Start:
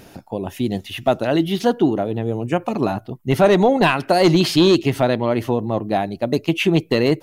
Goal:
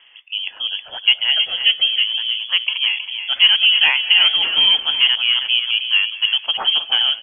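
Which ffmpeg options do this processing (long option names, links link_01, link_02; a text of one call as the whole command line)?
ffmpeg -i in.wav -filter_complex "[0:a]acrossover=split=360 2000:gain=0.158 1 0.178[link_01][link_02][link_03];[link_01][link_02][link_03]amix=inputs=3:normalize=0,dynaudnorm=framelen=110:gausssize=5:maxgain=5dB,asplit=2[link_04][link_05];[link_05]aecho=0:1:318:0.376[link_06];[link_04][link_06]amix=inputs=2:normalize=0,lowpass=frequency=3000:width_type=q:width=0.5098,lowpass=frequency=3000:width_type=q:width=0.6013,lowpass=frequency=3000:width_type=q:width=0.9,lowpass=frequency=3000:width_type=q:width=2.563,afreqshift=-3500,asplit=2[link_07][link_08];[link_08]asplit=4[link_09][link_10][link_11][link_12];[link_09]adelay=205,afreqshift=-78,volume=-20dB[link_13];[link_10]adelay=410,afreqshift=-156,volume=-25.4dB[link_14];[link_11]adelay=615,afreqshift=-234,volume=-30.7dB[link_15];[link_12]adelay=820,afreqshift=-312,volume=-36.1dB[link_16];[link_13][link_14][link_15][link_16]amix=inputs=4:normalize=0[link_17];[link_07][link_17]amix=inputs=2:normalize=0" out.wav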